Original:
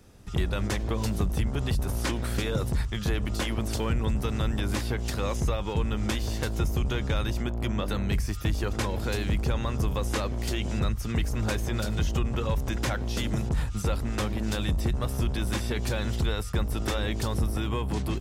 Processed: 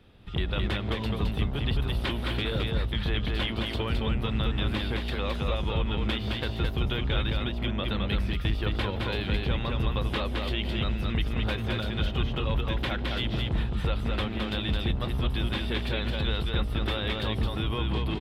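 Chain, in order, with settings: resonant high shelf 4700 Hz -11.5 dB, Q 3; echo 0.215 s -3 dB; gain -2.5 dB

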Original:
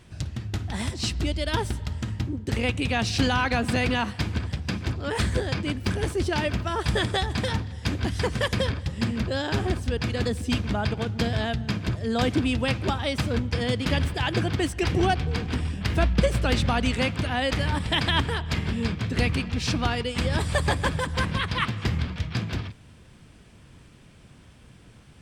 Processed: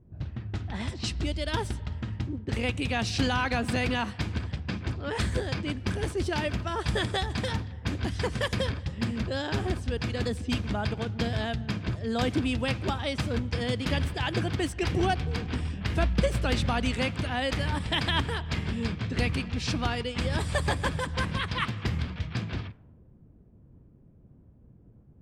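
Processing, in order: low-pass opened by the level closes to 370 Hz, open at -22 dBFS; gain -3.5 dB

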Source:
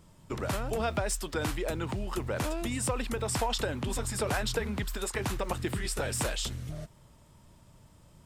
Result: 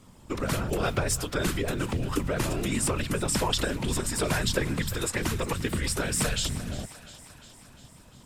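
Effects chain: whisperiser; on a send: thinning echo 0.351 s, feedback 65%, high-pass 610 Hz, level -15.5 dB; on the sum: dynamic EQ 760 Hz, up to -7 dB, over -47 dBFS, Q 1.7; gain +5 dB

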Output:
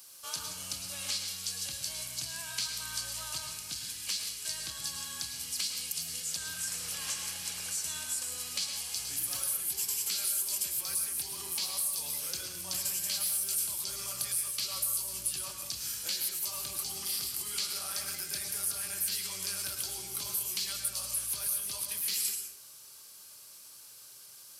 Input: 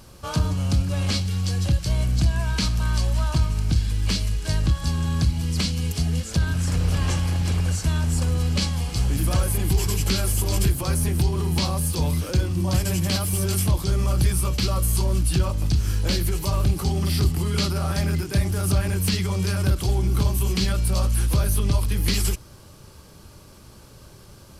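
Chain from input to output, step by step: differentiator; compressor 2.5:1, threshold -35 dBFS, peak gain reduction 8.5 dB; on a send: reverb RT60 0.65 s, pre-delay 98 ms, DRR 4 dB; on the sum: gain +2.5 dB

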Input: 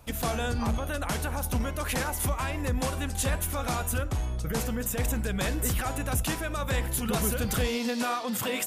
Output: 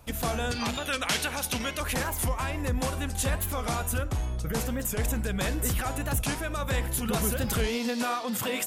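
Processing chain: 0.51–1.8 weighting filter D; record warp 45 rpm, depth 160 cents

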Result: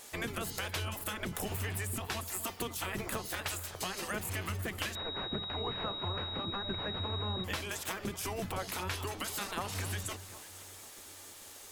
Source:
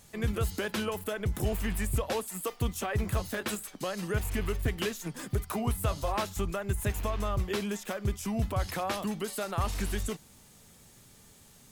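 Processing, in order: spectral gate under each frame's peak -10 dB weak; bell 88 Hz +15 dB 0.22 oct; compressor, threshold -42 dBFS, peak gain reduction 11 dB; echo with dull and thin repeats by turns 0.25 s, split 1300 Hz, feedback 62%, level -13 dB; 4.95–7.44 pulse-width modulation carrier 3800 Hz; gain +8 dB

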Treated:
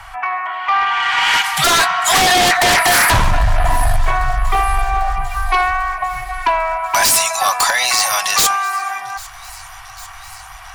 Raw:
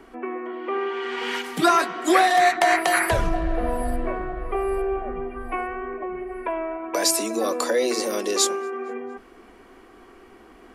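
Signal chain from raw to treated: elliptic band-stop 130–790 Hz, stop band 40 dB; in parallel at -6.5 dB: sine folder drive 17 dB, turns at -6.5 dBFS; on the sum: thin delay 0.797 s, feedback 75%, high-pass 3400 Hz, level -20.5 dB; gain +2 dB

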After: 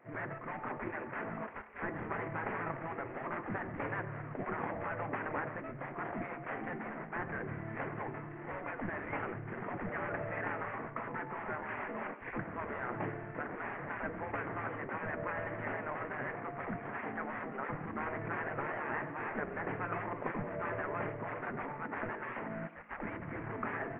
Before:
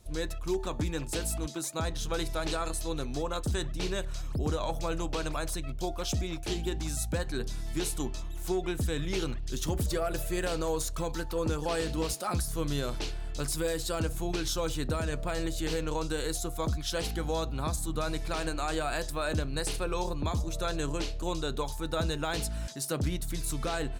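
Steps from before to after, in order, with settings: CVSD 16 kbps; elliptic low-pass 2000 Hz, stop band 80 dB; low shelf 82 Hz +11.5 dB; spectral gate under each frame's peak -20 dB weak; on a send: reverb RT60 0.55 s, pre-delay 77 ms, DRR 13 dB; on the sum: gain +4.5 dB

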